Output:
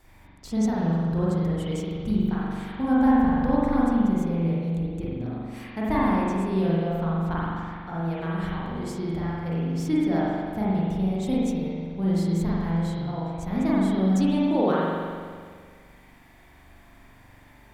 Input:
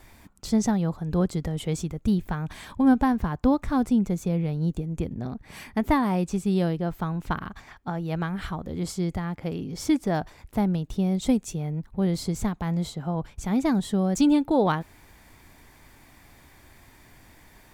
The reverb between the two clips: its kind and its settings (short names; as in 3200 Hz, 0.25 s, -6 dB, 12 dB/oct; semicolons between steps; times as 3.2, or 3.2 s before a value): spring tank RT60 1.9 s, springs 42 ms, chirp 70 ms, DRR -7.5 dB; gain -7.5 dB